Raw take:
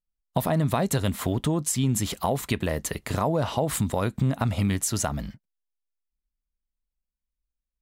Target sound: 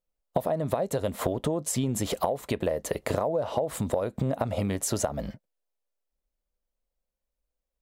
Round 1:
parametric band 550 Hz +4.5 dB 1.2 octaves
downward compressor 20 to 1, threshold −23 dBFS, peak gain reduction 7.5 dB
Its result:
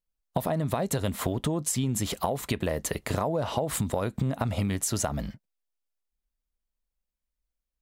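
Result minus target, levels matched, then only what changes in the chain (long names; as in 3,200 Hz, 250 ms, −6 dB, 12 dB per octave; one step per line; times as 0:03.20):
500 Hz band −3.5 dB
change: parametric band 550 Hz +16 dB 1.2 octaves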